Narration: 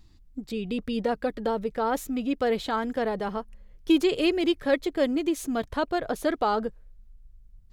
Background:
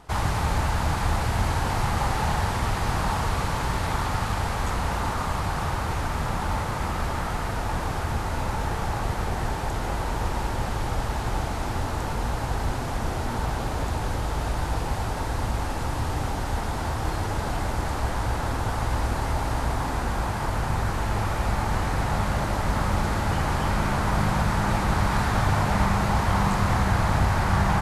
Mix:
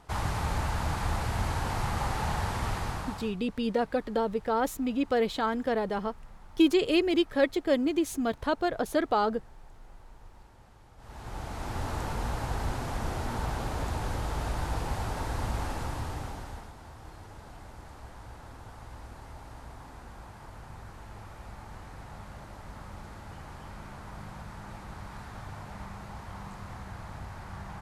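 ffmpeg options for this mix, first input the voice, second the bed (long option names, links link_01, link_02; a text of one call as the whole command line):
ffmpeg -i stem1.wav -i stem2.wav -filter_complex "[0:a]adelay=2700,volume=-1dB[link_01];[1:a]volume=17.5dB,afade=type=out:start_time=2.73:duration=0.63:silence=0.0749894,afade=type=in:start_time=10.97:duration=0.94:silence=0.0668344,afade=type=out:start_time=15.67:duration=1.07:silence=0.177828[link_02];[link_01][link_02]amix=inputs=2:normalize=0" out.wav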